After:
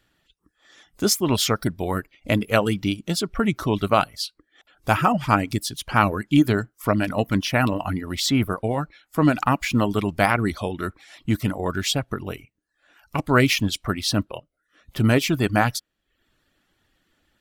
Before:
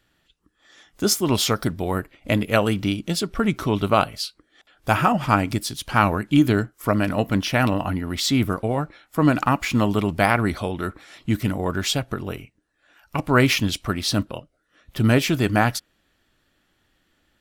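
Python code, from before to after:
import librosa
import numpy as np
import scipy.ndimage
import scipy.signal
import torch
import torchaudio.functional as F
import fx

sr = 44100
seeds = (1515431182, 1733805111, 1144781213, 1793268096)

y = fx.dereverb_blind(x, sr, rt60_s=0.54)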